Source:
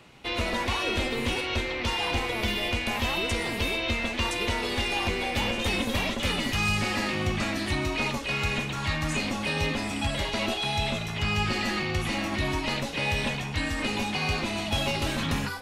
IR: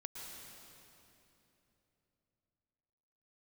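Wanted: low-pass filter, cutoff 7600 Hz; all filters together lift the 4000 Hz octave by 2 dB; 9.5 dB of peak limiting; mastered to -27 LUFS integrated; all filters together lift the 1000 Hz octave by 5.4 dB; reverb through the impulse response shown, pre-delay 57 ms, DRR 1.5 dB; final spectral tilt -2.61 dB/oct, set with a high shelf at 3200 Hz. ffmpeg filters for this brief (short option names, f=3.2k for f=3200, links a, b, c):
-filter_complex "[0:a]lowpass=7.6k,equalizer=f=1k:t=o:g=7,highshelf=f=3.2k:g=-4.5,equalizer=f=4k:t=o:g=5.5,alimiter=limit=-22.5dB:level=0:latency=1,asplit=2[a][b];[1:a]atrim=start_sample=2205,adelay=57[c];[b][c]afir=irnorm=-1:irlink=0,volume=1dB[d];[a][d]amix=inputs=2:normalize=0,volume=1dB"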